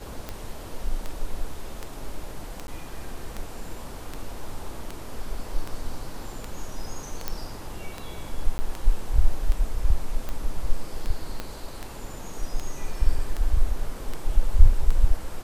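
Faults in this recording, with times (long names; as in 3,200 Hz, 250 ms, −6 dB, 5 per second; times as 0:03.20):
scratch tick 78 rpm −17 dBFS
0:02.67–0:02.68: drop-out 11 ms
0:07.28: click −12 dBFS
0:08.58–0:08.59: drop-out 10 ms
0:11.40: click −16 dBFS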